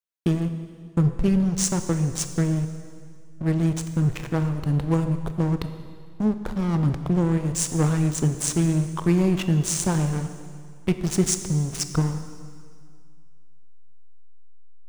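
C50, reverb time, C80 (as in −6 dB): 9.5 dB, 2.1 s, 10.5 dB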